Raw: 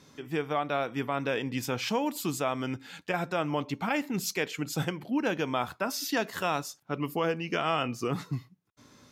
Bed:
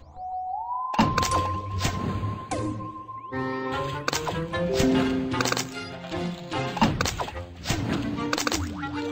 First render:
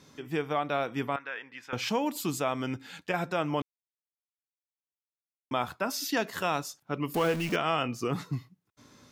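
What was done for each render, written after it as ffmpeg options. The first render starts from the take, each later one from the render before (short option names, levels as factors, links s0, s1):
-filter_complex "[0:a]asettb=1/sr,asplit=3[s0][s1][s2];[s0]atrim=end=1.164[s3];[s1]atrim=start=1.16:end=1.73,asetpts=PTS-STARTPTS,afade=t=in:d=0.004:c=qsin,afade=t=out:st=0.566:d=0.004:c=qsin,bandpass=f=1600:t=q:w=2[s4];[s2]atrim=start=1.726[s5];[s3][s4]acrossfade=d=0.004:c1=hsin:c2=qsin[s6];[s6][s5]acrossfade=d=0.004:c1=qsin:c2=hsin,asettb=1/sr,asplit=3[s7][s8][s9];[s7]atrim=end=7.144[s10];[s8]atrim=start=7.14:end=7.56,asetpts=PTS-STARTPTS,afade=t=in:d=0.004:c=qsin,afade=t=out:st=0.416:d=0.004:c=qsin,aeval=exprs='val(0)+0.5*0.0237*sgn(val(0))':c=same[s11];[s9]atrim=start=7.556[s12];[s10][s11]acrossfade=d=0.004:c1=hsin:c2=qsin[s13];[s13][s12]acrossfade=d=0.004:c1=qsin:c2=hsin,asplit=3[s14][s15][s16];[s14]atrim=end=3.62,asetpts=PTS-STARTPTS,afade=t=out:st=3.616:d=0.004:c=hsin[s17];[s15]atrim=start=3.62:end=5.51,asetpts=PTS-STARTPTS,volume=0[s18];[s16]atrim=start=5.51,asetpts=PTS-STARTPTS,afade=t=in:d=0.004:c=hsin[s19];[s17][s18][s19]concat=n=3:v=0:a=1"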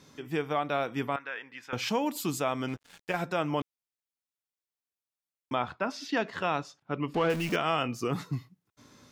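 -filter_complex "[0:a]asettb=1/sr,asplit=3[s0][s1][s2];[s0]atrim=end=2.684[s3];[s1]atrim=start=2.68:end=3.22,asetpts=PTS-STARTPTS,afade=t=in:d=0.004:c=qsin,afade=t=out:st=0.536:d=0.004:c=qsin,aeval=exprs='sgn(val(0))*max(abs(val(0))-0.00596,0)':c=same[s4];[s2]atrim=start=3.216[s5];[s3][s4]acrossfade=d=0.004:c1=hsin:c2=qsin[s6];[s6][s5]acrossfade=d=0.004:c1=qsin:c2=hsin,asettb=1/sr,asplit=3[s7][s8][s9];[s7]atrim=end=5.554[s10];[s8]atrim=start=5.55:end=7.3,asetpts=PTS-STARTPTS,afade=t=in:d=0.004:c=qsin,afade=t=out:st=1.746:d=0.004:c=qsin,lowpass=3600[s11];[s9]atrim=start=7.296[s12];[s10][s11]acrossfade=d=0.004:c1=hsin:c2=qsin[s13];[s13][s12]acrossfade=d=0.004:c1=qsin:c2=hsin"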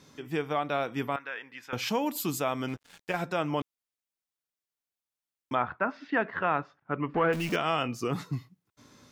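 -filter_complex "[0:a]asettb=1/sr,asplit=3[s0][s1][s2];[s0]atrim=end=0.994[s3];[s1]atrim=start=0.99:end=2.73,asetpts=PTS-STARTPTS,afade=t=in:d=0.004:c=qsin,afade=t=out:st=1.736:d=0.004:c=qsin,equalizer=f=13000:t=o:w=0.38:g=6.5[s4];[s2]atrim=start=2.726[s5];[s3][s4]acrossfade=d=0.004:c1=hsin:c2=qsin[s6];[s6][s5]acrossfade=d=0.004:c1=qsin:c2=hsin,asettb=1/sr,asplit=3[s7][s8][s9];[s7]atrim=end=5.554[s10];[s8]atrim=start=5.55:end=7.33,asetpts=PTS-STARTPTS,afade=t=in:d=0.004:c=qsin,afade=t=out:st=1.776:d=0.004:c=qsin,lowpass=f=1700:t=q:w=1.7[s11];[s9]atrim=start=7.326[s12];[s10][s11]acrossfade=d=0.004:c1=hsin:c2=qsin[s13];[s13][s12]acrossfade=d=0.004:c1=qsin:c2=hsin"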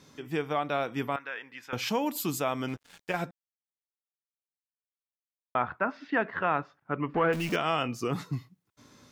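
-filter_complex "[0:a]asplit=3[s0][s1][s2];[s0]atrim=end=3.31,asetpts=PTS-STARTPTS,afade=t=out:st=3.306:d=0.004:c=hsin[s3];[s1]atrim=start=3.31:end=5.55,asetpts=PTS-STARTPTS,volume=0[s4];[s2]atrim=start=5.55,asetpts=PTS-STARTPTS,afade=t=in:d=0.004:c=hsin[s5];[s3][s4][s5]concat=n=3:v=0:a=1"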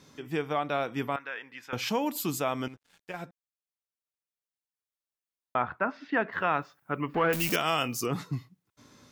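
-filter_complex "[0:a]asettb=1/sr,asplit=3[s0][s1][s2];[s0]atrim=end=6.324[s3];[s1]atrim=start=6.32:end=8.06,asetpts=PTS-STARTPTS,afade=t=in:d=0.004:c=qsin,afade=t=out:st=1.736:d=0.004:c=qsin,aemphasis=mode=production:type=75fm[s4];[s2]atrim=start=8.056[s5];[s3][s4]acrossfade=d=0.004:c1=hsin:c2=qsin[s6];[s6][s5]acrossfade=d=0.004:c1=qsin:c2=hsin,asplit=2[s7][s8];[s7]atrim=end=2.68,asetpts=PTS-STARTPTS,afade=t=out:st=2.676:d=0.004:c=hsin:silence=0.237137[s9];[s8]atrim=start=2.68,asetpts=PTS-STARTPTS,afade=t=in:d=3.14:c=qsin:silence=0.237137[s10];[s9][s10]concat=n=2:v=0:a=1"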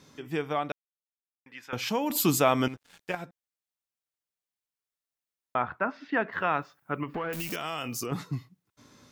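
-filter_complex "[0:a]asettb=1/sr,asplit=3[s0][s1][s2];[s0]atrim=end=2.104[s3];[s1]atrim=start=2.1:end=3.15,asetpts=PTS-STARTPTS,afade=t=in:d=0.004:c=qsin,afade=t=out:st=1.046:d=0.004:c=qsin,acontrast=90[s4];[s2]atrim=start=3.146[s5];[s3][s4]acrossfade=d=0.004:c1=hsin:c2=qsin[s6];[s6][s5]acrossfade=d=0.004:c1=qsin:c2=hsin,asettb=1/sr,asplit=3[s7][s8][s9];[s7]atrim=end=7.034[s10];[s8]atrim=start=7.03:end=8.12,asetpts=PTS-STARTPTS,afade=t=in:d=0.004:c=qsin,afade=t=out:st=1.086:d=0.004:c=qsin,acompressor=threshold=0.0355:ratio=6:attack=3.2:release=140:knee=1:detection=peak[s11];[s9]atrim=start=8.116[s12];[s10][s11]acrossfade=d=0.004:c1=hsin:c2=qsin[s13];[s13][s12]acrossfade=d=0.004:c1=qsin:c2=hsin,asplit=3[s14][s15][s16];[s14]atrim=end=0.72,asetpts=PTS-STARTPTS,afade=t=out:st=0.716:d=0.004:c=hsin[s17];[s15]atrim=start=0.72:end=1.46,asetpts=PTS-STARTPTS,volume=0[s18];[s16]atrim=start=1.46,asetpts=PTS-STARTPTS,afade=t=in:d=0.004:c=hsin[s19];[s17][s18][s19]concat=n=3:v=0:a=1"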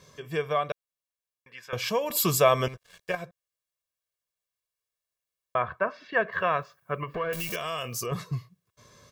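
-af "aecho=1:1:1.8:0.81"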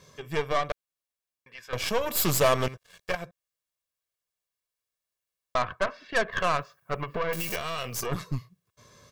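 -af "asoftclip=type=tanh:threshold=0.178,aeval=exprs='0.178*(cos(1*acos(clip(val(0)/0.178,-1,1)))-cos(1*PI/2))+0.0141*(cos(4*acos(clip(val(0)/0.178,-1,1)))-cos(4*PI/2))+0.0447*(cos(6*acos(clip(val(0)/0.178,-1,1)))-cos(6*PI/2))+0.00631*(cos(8*acos(clip(val(0)/0.178,-1,1)))-cos(8*PI/2))':c=same"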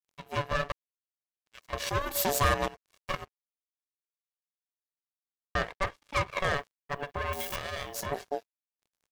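-af "aeval=exprs='sgn(val(0))*max(abs(val(0))-0.00447,0)':c=same,aeval=exprs='val(0)*sin(2*PI*570*n/s)':c=same"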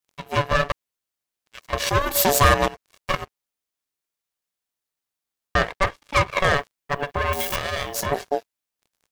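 -af "volume=2.99"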